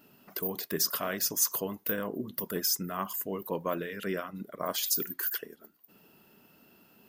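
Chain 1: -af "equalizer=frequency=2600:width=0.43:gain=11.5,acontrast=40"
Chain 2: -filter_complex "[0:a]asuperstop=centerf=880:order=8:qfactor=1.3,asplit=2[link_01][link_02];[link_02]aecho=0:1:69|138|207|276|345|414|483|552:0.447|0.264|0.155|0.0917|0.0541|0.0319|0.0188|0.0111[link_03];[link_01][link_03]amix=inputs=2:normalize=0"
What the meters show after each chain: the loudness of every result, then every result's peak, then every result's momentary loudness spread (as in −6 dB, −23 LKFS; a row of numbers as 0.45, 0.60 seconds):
−21.5, −30.5 LKFS; −4.0, −12.5 dBFS; 10, 9 LU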